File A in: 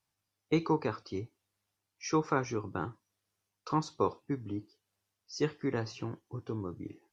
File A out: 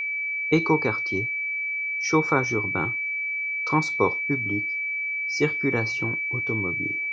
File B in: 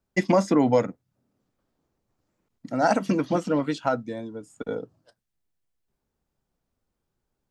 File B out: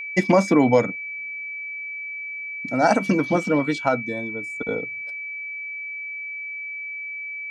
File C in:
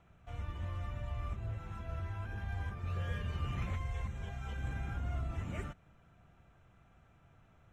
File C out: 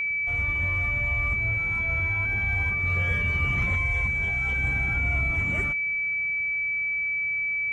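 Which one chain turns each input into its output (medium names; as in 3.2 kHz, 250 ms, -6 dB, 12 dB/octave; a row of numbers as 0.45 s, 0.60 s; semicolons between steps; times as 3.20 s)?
whistle 2.3 kHz -33 dBFS; normalise loudness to -24 LUFS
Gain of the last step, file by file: +7.5 dB, +3.0 dB, +8.5 dB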